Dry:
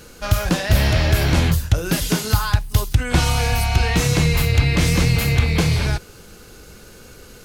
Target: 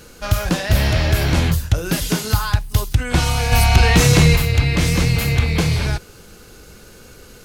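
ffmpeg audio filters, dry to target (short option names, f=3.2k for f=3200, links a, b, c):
-filter_complex "[0:a]asplit=3[a][b][c];[a]afade=t=out:st=3.51:d=0.02[d];[b]acontrast=69,afade=t=in:st=3.51:d=0.02,afade=t=out:st=4.35:d=0.02[e];[c]afade=t=in:st=4.35:d=0.02[f];[d][e][f]amix=inputs=3:normalize=0"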